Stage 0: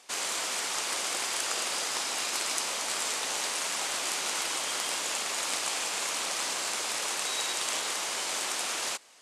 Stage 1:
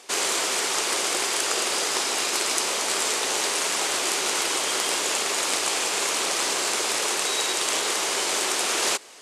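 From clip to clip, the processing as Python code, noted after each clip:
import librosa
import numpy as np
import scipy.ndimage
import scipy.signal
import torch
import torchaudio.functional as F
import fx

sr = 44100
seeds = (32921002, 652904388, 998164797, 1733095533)

y = fx.peak_eq(x, sr, hz=390.0, db=8.5, octaves=0.6)
y = fx.rider(y, sr, range_db=10, speed_s=0.5)
y = y * 10.0 ** (6.5 / 20.0)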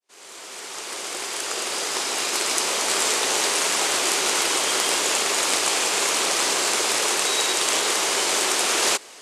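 y = fx.fade_in_head(x, sr, length_s=3.04)
y = y * 10.0 ** (3.0 / 20.0)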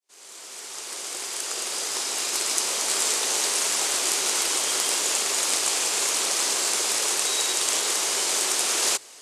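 y = fx.bass_treble(x, sr, bass_db=-1, treble_db=7)
y = fx.hum_notches(y, sr, base_hz=60, count=2)
y = y * 10.0 ** (-6.5 / 20.0)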